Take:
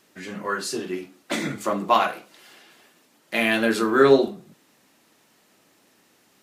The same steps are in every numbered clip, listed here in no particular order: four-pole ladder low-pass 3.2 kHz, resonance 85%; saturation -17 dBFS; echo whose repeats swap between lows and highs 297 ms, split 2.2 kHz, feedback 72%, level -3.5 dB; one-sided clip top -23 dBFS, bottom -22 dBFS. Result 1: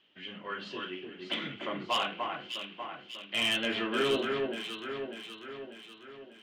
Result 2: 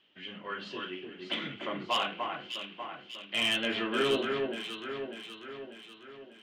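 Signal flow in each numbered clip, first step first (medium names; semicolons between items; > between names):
four-pole ladder low-pass > one-sided clip > echo whose repeats swap between lows and highs > saturation; four-pole ladder low-pass > saturation > one-sided clip > echo whose repeats swap between lows and highs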